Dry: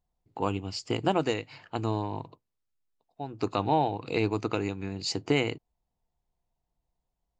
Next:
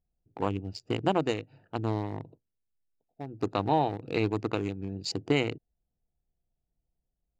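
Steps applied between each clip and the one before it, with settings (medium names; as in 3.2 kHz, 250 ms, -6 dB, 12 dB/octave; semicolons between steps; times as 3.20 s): local Wiener filter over 41 samples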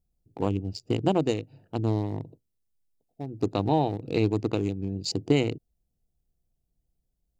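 peaking EQ 1.5 kHz -11.5 dB 2 oct; trim +5.5 dB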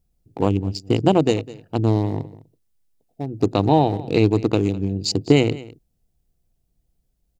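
delay 205 ms -19 dB; trim +7.5 dB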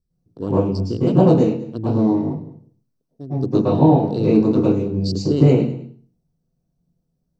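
reverberation RT60 0.45 s, pre-delay 100 ms, DRR -11 dB; trim -17 dB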